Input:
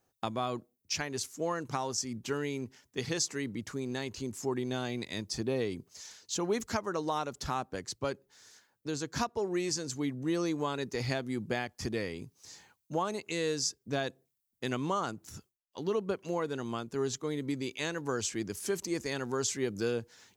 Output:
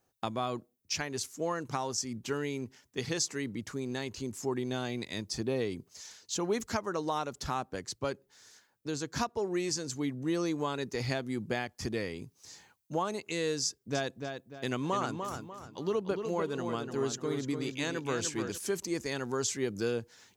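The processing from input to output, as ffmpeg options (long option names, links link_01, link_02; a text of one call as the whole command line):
ffmpeg -i in.wav -filter_complex "[0:a]asettb=1/sr,asplit=3[link_01][link_02][link_03];[link_01]atrim=end=13.654[link_04];[link_02]atrim=start=13.65:end=18.58,asetpts=PTS-STARTPTS,afade=type=in:duration=0.004:curve=qsin,afade=type=out:start_time=4.926:duration=0.004:curve=qsin,asplit=2[link_05][link_06];[link_06]adelay=296,lowpass=frequency=4300:poles=1,volume=-6dB,asplit=2[link_07][link_08];[link_08]adelay=296,lowpass=frequency=4300:poles=1,volume=0.37,asplit=2[link_09][link_10];[link_10]adelay=296,lowpass=frequency=4300:poles=1,volume=0.37,asplit=2[link_11][link_12];[link_12]adelay=296,lowpass=frequency=4300:poles=1,volume=0.37[link_13];[link_05][link_07][link_09][link_11][link_13]amix=inputs=5:normalize=0,atrim=end_sample=217413[link_14];[link_03]atrim=start=18.576[link_15];[link_04][link_14]acrossfade=duration=0.004:curve1=hsin:curve2=qsin[link_16];[link_16][link_15]acrossfade=duration=0.004:curve1=qsin:curve2=hsin" out.wav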